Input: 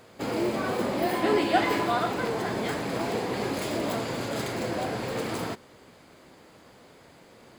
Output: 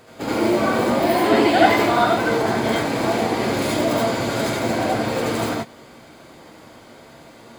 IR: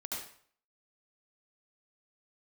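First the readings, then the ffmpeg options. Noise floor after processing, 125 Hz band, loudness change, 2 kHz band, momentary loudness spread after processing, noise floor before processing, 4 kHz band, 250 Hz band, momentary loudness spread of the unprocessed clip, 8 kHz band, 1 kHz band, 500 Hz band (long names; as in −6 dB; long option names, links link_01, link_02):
−45 dBFS, +7.5 dB, +9.0 dB, +9.0 dB, 7 LU, −54 dBFS, +8.0 dB, +9.0 dB, 7 LU, +8.0 dB, +9.0 dB, +8.5 dB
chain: -filter_complex "[1:a]atrim=start_sample=2205,atrim=end_sample=4410[link_01];[0:a][link_01]afir=irnorm=-1:irlink=0,volume=9dB"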